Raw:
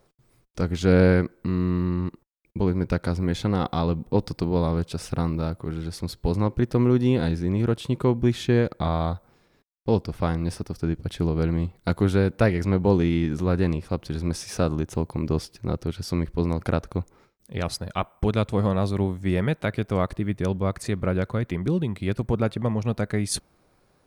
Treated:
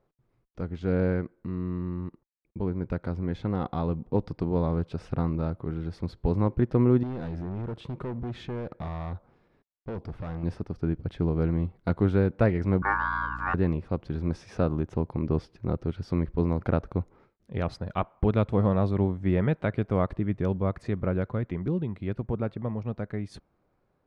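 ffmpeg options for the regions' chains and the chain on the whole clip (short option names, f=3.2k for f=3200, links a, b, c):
-filter_complex "[0:a]asettb=1/sr,asplit=3[a][b][c];[a]atrim=end=7.034[d];[b]atrim=start=7.03:end=10.43,asetpts=PTS-STARTPTS,afade=t=in:d=0.004:c=qsin,afade=t=out:st=3.396:d=0.004:c=qsin,acompressor=threshold=-26dB:ratio=2:attack=3.2:release=140:knee=1:detection=peak,volume=28.5dB,asoftclip=hard,volume=-28.5dB[e];[c]atrim=start=10.426[f];[d][e]acrossfade=d=0.004:c1=hsin:c2=qsin[g];[g][f]acrossfade=d=0.004:c1=qsin:c2=hsin,asettb=1/sr,asplit=3[h][i][j];[h]atrim=end=12.824[k];[i]atrim=start=12.82:end=13.54,asetpts=PTS-STARTPTS,afade=t=in:d=0.004:c=qsin,afade=t=out:st=0.716:d=0.004:c=qsin,aeval=exprs='val(0)*sin(2*PI*1300*n/s)':c=same,aeval=exprs='val(0)+0.0158*(sin(2*PI*60*n/s)+sin(2*PI*2*60*n/s)/2+sin(2*PI*3*60*n/s)/3+sin(2*PI*4*60*n/s)/4+sin(2*PI*5*60*n/s)/5)':c=same[l];[j]atrim=start=13.536[m];[k][l]acrossfade=d=0.004:c1=hsin:c2=qsin[n];[n][m]acrossfade=d=0.004:c1=qsin:c2=hsin,lowpass=f=1.9k:p=1,aemphasis=mode=reproduction:type=50fm,dynaudnorm=f=570:g=13:m=11.5dB,volume=-8.5dB"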